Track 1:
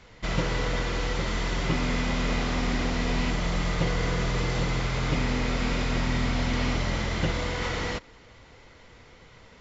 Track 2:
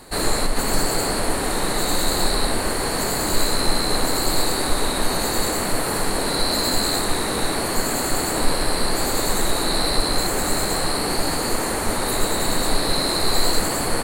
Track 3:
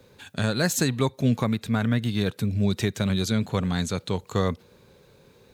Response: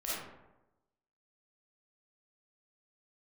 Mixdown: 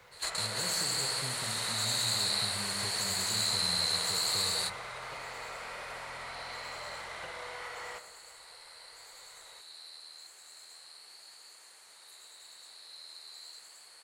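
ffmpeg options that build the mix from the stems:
-filter_complex "[0:a]acrossover=split=540 2300:gain=0.0708 1 0.2[link_01][link_02][link_03];[link_01][link_02][link_03]amix=inputs=3:normalize=0,volume=-1dB,asplit=2[link_04][link_05];[link_05]volume=-18dB[link_06];[1:a]bandpass=frequency=4800:width_type=q:width=0.92:csg=0,volume=-3.5dB[link_07];[2:a]volume=-10.5dB,asplit=3[link_08][link_09][link_10];[link_09]volume=-14.5dB[link_11];[link_10]apad=whole_len=618862[link_12];[link_07][link_12]sidechaingate=range=-20dB:threshold=-54dB:ratio=16:detection=peak[link_13];[link_04][link_08]amix=inputs=2:normalize=0,bass=frequency=250:gain=0,treble=frequency=4000:gain=7,acompressor=threshold=-41dB:ratio=6,volume=0dB[link_14];[3:a]atrim=start_sample=2205[link_15];[link_06][link_11]amix=inputs=2:normalize=0[link_16];[link_16][link_15]afir=irnorm=-1:irlink=0[link_17];[link_13][link_14][link_17]amix=inputs=3:normalize=0,equalizer=frequency=260:width_type=o:width=0.58:gain=-10.5"

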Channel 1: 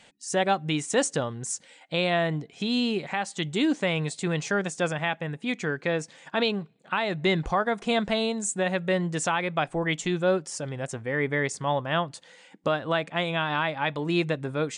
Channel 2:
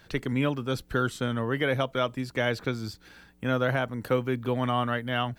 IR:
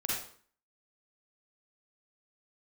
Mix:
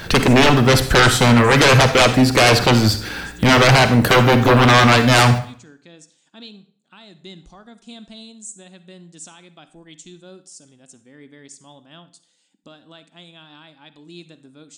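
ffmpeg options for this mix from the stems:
-filter_complex "[0:a]equalizer=frequency=125:width_type=o:width=1:gain=-11,equalizer=frequency=250:width_type=o:width=1:gain=6,equalizer=frequency=500:width_type=o:width=1:gain=-10,equalizer=frequency=1000:width_type=o:width=1:gain=-7,equalizer=frequency=2000:width_type=o:width=1:gain=-11,equalizer=frequency=4000:width_type=o:width=1:gain=5,equalizer=frequency=8000:width_type=o:width=1:gain=7,volume=-13dB,asplit=2[link_01][link_02];[link_02]volume=-16dB[link_03];[1:a]aeval=exprs='0.237*sin(PI/2*5.01*val(0)/0.237)':channel_layout=same,volume=2.5dB,asplit=2[link_04][link_05];[link_05]volume=-11.5dB[link_06];[2:a]atrim=start_sample=2205[link_07];[link_03][link_06]amix=inputs=2:normalize=0[link_08];[link_08][link_07]afir=irnorm=-1:irlink=0[link_09];[link_01][link_04][link_09]amix=inputs=3:normalize=0"

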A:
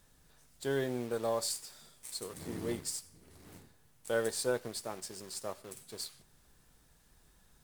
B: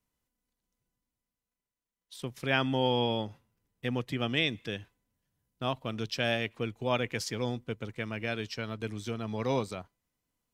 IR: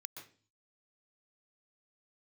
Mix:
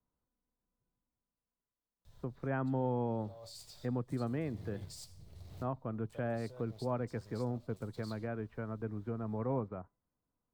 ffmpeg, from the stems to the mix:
-filter_complex "[0:a]equalizer=frequency=630:width_type=o:width=0.67:gain=8,equalizer=frequency=1600:width_type=o:width=0.67:gain=-5,equalizer=frequency=4000:width_type=o:width=0.67:gain=7,equalizer=frequency=10000:width_type=o:width=0.67:gain=-7,alimiter=level_in=7dB:limit=-24dB:level=0:latency=1:release=26,volume=-7dB,lowshelf=frequency=170:width_type=q:width=1.5:gain=13,adelay=2050,volume=-5dB[link_01];[1:a]lowpass=frequency=1400:width=0.5412,lowpass=frequency=1400:width=1.3066,volume=-2dB,asplit=2[link_02][link_03];[link_03]apad=whole_len=426985[link_04];[link_01][link_04]sidechaincompress=threshold=-40dB:ratio=8:attack=31:release=684[link_05];[link_05][link_02]amix=inputs=2:normalize=0,acrossover=split=250[link_06][link_07];[link_07]acompressor=threshold=-42dB:ratio=1.5[link_08];[link_06][link_08]amix=inputs=2:normalize=0"

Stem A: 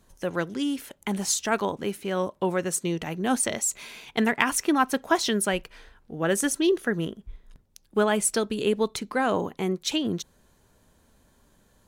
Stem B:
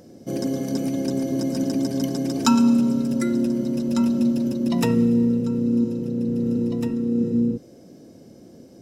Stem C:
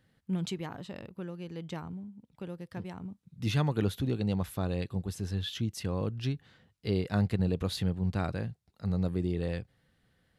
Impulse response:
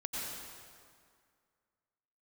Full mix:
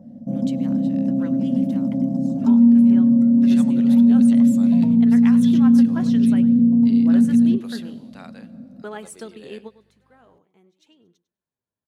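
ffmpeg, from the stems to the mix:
-filter_complex "[0:a]highshelf=frequency=4100:gain=-6,flanger=delay=2.1:depth=7.9:regen=64:speed=0.5:shape=sinusoidal,adelay=850,volume=-7dB,asplit=2[link_01][link_02];[link_02]volume=-18dB[link_03];[1:a]acompressor=threshold=-21dB:ratio=6,firequalizer=gain_entry='entry(110,0);entry(230,13);entry(390,-27);entry(560,2);entry(1600,-26)':delay=0.05:min_phase=1,volume=-0.5dB,asplit=2[link_04][link_05];[link_05]volume=-18dB[link_06];[2:a]highpass=530,aeval=exprs='val(0)+0.002*(sin(2*PI*50*n/s)+sin(2*PI*2*50*n/s)/2+sin(2*PI*3*50*n/s)/3+sin(2*PI*4*50*n/s)/4+sin(2*PI*5*50*n/s)/5)':channel_layout=same,adynamicequalizer=threshold=0.00251:dfrequency=2100:dqfactor=0.7:tfrequency=2100:tqfactor=0.7:attack=5:release=100:ratio=0.375:range=2.5:mode=boostabove:tftype=highshelf,volume=-7dB,asplit=3[link_07][link_08][link_09];[link_08]volume=-19.5dB[link_10];[link_09]apad=whole_len=561135[link_11];[link_01][link_11]sidechaingate=range=-35dB:threshold=-56dB:ratio=16:detection=peak[link_12];[3:a]atrim=start_sample=2205[link_13];[link_06][link_10]amix=inputs=2:normalize=0[link_14];[link_14][link_13]afir=irnorm=-1:irlink=0[link_15];[link_03]aecho=0:1:100|200|300:1|0.15|0.0225[link_16];[link_12][link_04][link_07][link_15][link_16]amix=inputs=5:normalize=0,highpass=87"

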